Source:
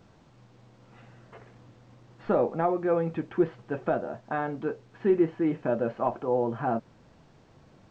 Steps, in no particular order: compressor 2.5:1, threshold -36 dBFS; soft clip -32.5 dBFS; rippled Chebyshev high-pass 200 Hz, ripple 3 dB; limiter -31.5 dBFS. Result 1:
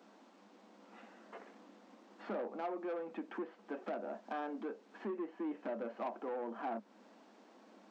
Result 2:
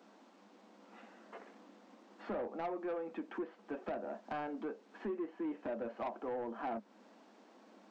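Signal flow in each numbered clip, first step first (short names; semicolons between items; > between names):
compressor > soft clip > limiter > rippled Chebyshev high-pass; compressor > rippled Chebyshev high-pass > soft clip > limiter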